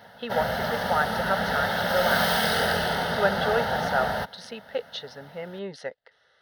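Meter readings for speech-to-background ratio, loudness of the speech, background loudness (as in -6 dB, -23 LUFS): -4.5 dB, -30.5 LUFS, -26.0 LUFS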